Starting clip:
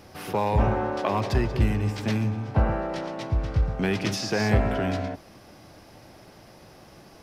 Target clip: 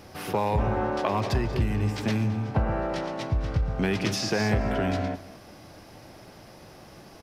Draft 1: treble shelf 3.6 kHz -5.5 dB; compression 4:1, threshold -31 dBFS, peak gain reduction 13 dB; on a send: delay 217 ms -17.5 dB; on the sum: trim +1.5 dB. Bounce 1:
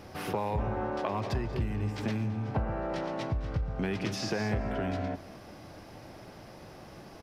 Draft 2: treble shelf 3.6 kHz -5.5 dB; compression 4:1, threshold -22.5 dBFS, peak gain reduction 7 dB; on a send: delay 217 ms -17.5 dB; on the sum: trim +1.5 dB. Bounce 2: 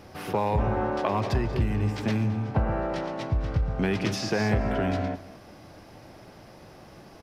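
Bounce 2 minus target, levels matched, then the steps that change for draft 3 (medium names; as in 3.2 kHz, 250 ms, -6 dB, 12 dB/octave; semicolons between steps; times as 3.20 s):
8 kHz band -4.0 dB
remove: treble shelf 3.6 kHz -5.5 dB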